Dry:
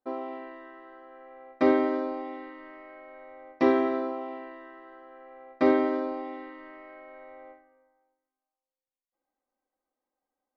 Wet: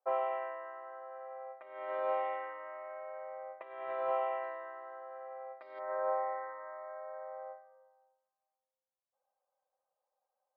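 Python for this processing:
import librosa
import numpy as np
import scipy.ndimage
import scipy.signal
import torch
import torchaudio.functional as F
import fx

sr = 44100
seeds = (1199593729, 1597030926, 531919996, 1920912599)

y = fx.env_lowpass(x, sr, base_hz=960.0, full_db=-23.5)
y = fx.ellip_bandpass(y, sr, low_hz=540.0, high_hz=fx.steps((0.0, 3000.0), (4.42, 5000.0), (5.78, 1800.0)), order=3, stop_db=40)
y = fx.over_compress(y, sr, threshold_db=-36.0, ratio=-0.5)
y = y * librosa.db_to_amplitude(1.0)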